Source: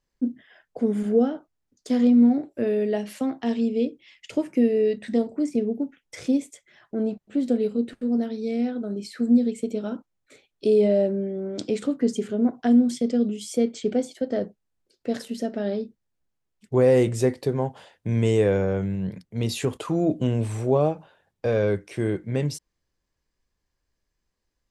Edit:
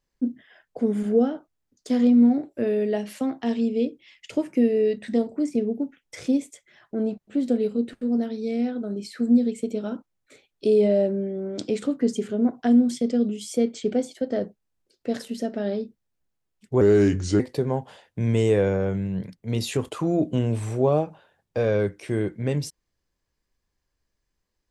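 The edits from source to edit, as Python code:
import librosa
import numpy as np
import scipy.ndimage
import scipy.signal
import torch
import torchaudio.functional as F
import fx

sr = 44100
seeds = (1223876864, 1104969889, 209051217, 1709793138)

y = fx.edit(x, sr, fx.speed_span(start_s=16.81, length_s=0.47, speed=0.8), tone=tone)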